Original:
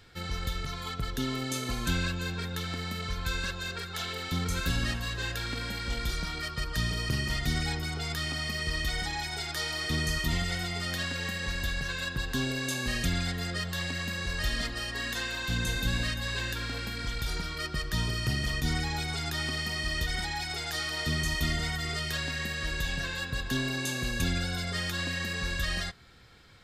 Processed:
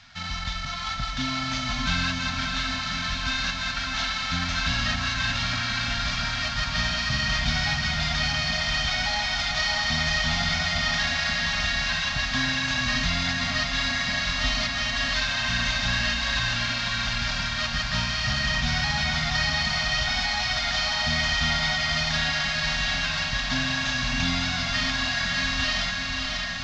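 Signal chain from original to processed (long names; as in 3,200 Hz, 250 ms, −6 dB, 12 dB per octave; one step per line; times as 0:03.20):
variable-slope delta modulation 32 kbit/s
elliptic band-stop filter 260–610 Hz, stop band 40 dB
low-shelf EQ 290 Hz −7 dB
on a send: feedback delay with all-pass diffusion 593 ms, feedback 71%, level −3.5 dB
on the sum: level +7 dB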